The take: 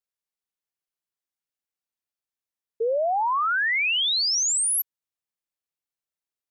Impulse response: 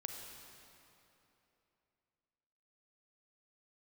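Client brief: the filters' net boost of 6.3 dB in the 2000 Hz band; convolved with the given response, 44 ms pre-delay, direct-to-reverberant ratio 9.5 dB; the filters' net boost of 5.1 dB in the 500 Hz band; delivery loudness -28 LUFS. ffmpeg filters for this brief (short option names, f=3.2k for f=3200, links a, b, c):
-filter_complex "[0:a]equalizer=f=500:t=o:g=5.5,equalizer=f=2k:t=o:g=7.5,asplit=2[a][b];[1:a]atrim=start_sample=2205,adelay=44[c];[b][c]afir=irnorm=-1:irlink=0,volume=-8dB[d];[a][d]amix=inputs=2:normalize=0,volume=-10dB"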